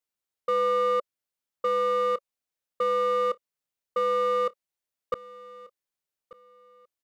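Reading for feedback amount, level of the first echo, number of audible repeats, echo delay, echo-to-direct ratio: 24%, −19.5 dB, 2, 1,188 ms, −19.5 dB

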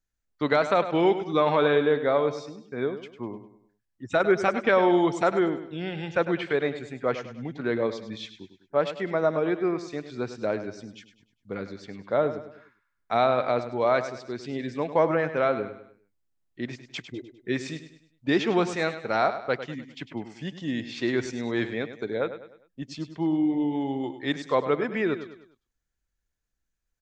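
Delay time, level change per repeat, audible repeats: 101 ms, −7.5 dB, 4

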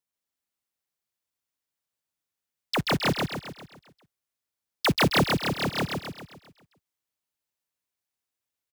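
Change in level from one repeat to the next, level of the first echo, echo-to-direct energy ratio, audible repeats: −6.0 dB, −3.0 dB, −1.5 dB, 6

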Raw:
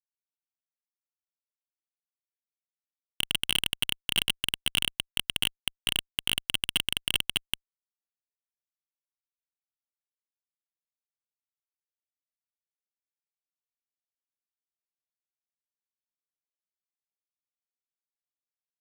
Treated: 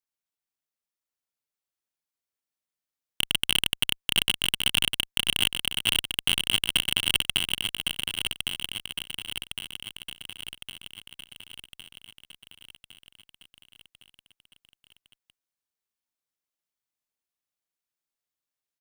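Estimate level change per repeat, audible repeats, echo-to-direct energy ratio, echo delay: −5.0 dB, 6, −4.0 dB, 1,109 ms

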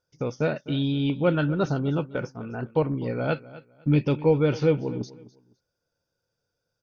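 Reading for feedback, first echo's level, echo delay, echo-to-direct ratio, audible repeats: 24%, −18.0 dB, 254 ms, −17.5 dB, 2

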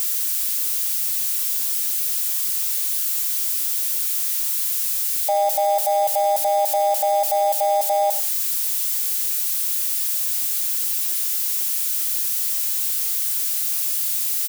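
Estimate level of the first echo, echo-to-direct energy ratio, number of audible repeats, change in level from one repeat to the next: −16.5 dB, −16.5 dB, 2, −14.0 dB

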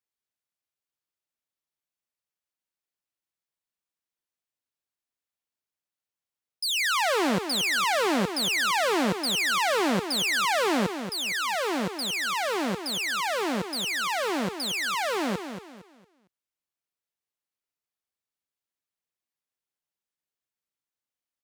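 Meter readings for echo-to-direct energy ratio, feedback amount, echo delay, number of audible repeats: −8.5 dB, 32%, 229 ms, 3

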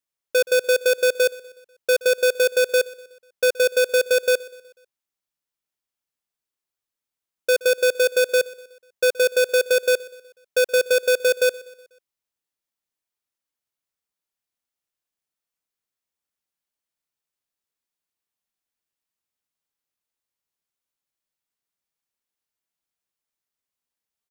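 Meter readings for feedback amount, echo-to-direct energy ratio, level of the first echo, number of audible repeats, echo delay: 51%, −19.5 dB, −21.0 dB, 3, 123 ms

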